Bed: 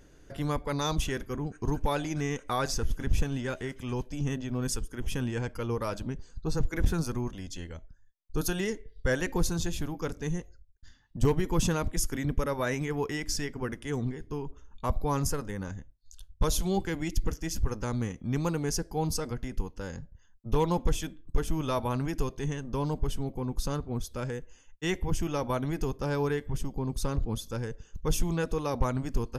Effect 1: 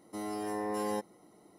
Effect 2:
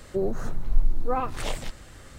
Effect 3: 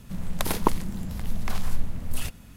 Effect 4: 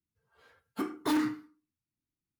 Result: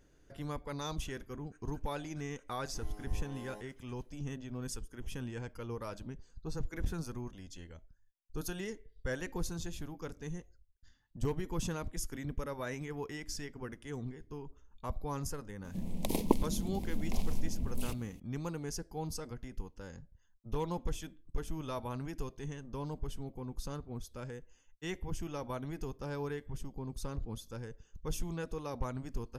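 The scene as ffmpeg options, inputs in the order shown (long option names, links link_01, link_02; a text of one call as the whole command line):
ffmpeg -i bed.wav -i cue0.wav -i cue1.wav -i cue2.wav -filter_complex "[0:a]volume=-9.5dB[link_01];[1:a]acrusher=bits=11:mix=0:aa=0.000001[link_02];[3:a]firequalizer=gain_entry='entry(140,0);entry(240,10);entry(360,7);entry(990,-2);entry(1400,-23);entry(2200,-1)':delay=0.05:min_phase=1[link_03];[link_02]atrim=end=1.58,asetpts=PTS-STARTPTS,volume=-16.5dB,afade=type=in:duration=0.004:curve=hsin,afade=type=out:start_time=1.576:duration=0.004:curve=hsin,adelay=2610[link_04];[link_03]atrim=end=2.56,asetpts=PTS-STARTPTS,volume=-8.5dB,afade=type=in:duration=0.004:curve=hsin,afade=type=out:start_time=2.556:duration=0.004:curve=hsin,adelay=15640[link_05];[link_01][link_04][link_05]amix=inputs=3:normalize=0" out.wav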